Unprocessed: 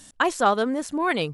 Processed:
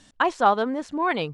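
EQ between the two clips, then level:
dynamic equaliser 880 Hz, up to +6 dB, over −35 dBFS, Q 2.2
low-pass filter 4,700 Hz 12 dB per octave
−2.0 dB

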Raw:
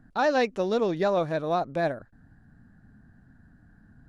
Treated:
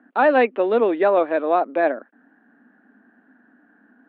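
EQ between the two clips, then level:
Butterworth high-pass 240 Hz 48 dB per octave
Butterworth low-pass 3,000 Hz 36 dB per octave
+7.5 dB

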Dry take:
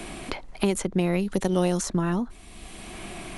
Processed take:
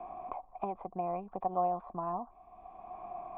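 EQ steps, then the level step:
formant resonators in series a
+7.0 dB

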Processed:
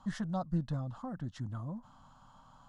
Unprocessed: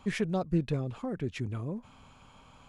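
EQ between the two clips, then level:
high-frequency loss of the air 64 metres
parametric band 67 Hz −13 dB 0.79 octaves
phaser with its sweep stopped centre 990 Hz, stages 4
0.0 dB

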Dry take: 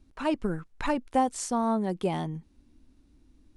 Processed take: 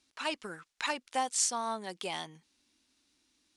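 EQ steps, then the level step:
resonant band-pass 5,300 Hz, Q 0.73
+8.0 dB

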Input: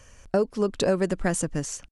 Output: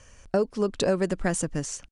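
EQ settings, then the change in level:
elliptic low-pass filter 10,000 Hz, stop band 40 dB
0.0 dB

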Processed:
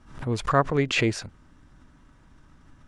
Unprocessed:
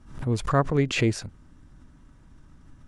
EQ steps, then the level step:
low-shelf EQ 430 Hz −8 dB
high-shelf EQ 7,100 Hz −9.5 dB
+4.5 dB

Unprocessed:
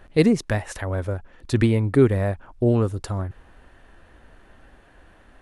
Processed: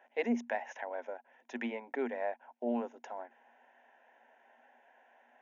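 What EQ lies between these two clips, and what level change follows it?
Chebyshev high-pass with heavy ripple 230 Hz, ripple 9 dB
linear-phase brick-wall low-pass 6,900 Hz
phaser with its sweep stopped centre 1,200 Hz, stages 6
−1.0 dB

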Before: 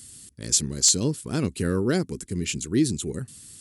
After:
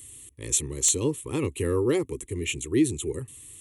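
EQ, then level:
phaser with its sweep stopped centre 1,000 Hz, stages 8
+3.0 dB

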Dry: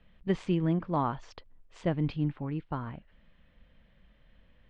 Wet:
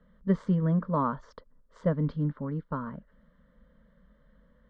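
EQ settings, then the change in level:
high-pass filter 48 Hz 6 dB per octave
low-pass filter 1,600 Hz 6 dB per octave
phaser with its sweep stopped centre 510 Hz, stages 8
+6.0 dB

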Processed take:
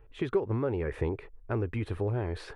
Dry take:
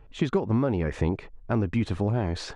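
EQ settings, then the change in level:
drawn EQ curve 120 Hz 0 dB, 200 Hz −10 dB, 420 Hz +5 dB, 640 Hz −3 dB, 1,700 Hz +1 dB, 2,500 Hz −1 dB, 6,900 Hz −12 dB, 10,000 Hz +3 dB
−4.5 dB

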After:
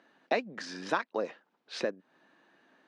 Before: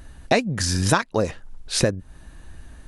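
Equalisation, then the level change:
Bessel high-pass filter 360 Hz, order 6
high-frequency loss of the air 220 metres
−7.5 dB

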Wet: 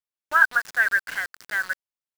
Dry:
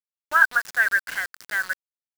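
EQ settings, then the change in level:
high-shelf EQ 5,000 Hz −4 dB
0.0 dB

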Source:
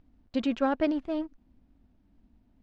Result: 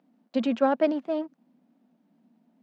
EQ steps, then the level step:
Chebyshev high-pass with heavy ripple 160 Hz, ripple 6 dB
+6.0 dB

